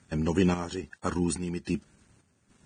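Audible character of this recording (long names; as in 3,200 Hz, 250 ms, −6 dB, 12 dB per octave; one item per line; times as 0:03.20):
a quantiser's noise floor 10 bits, dither none
chopped level 1.2 Hz, depth 60%, duty 65%
Ogg Vorbis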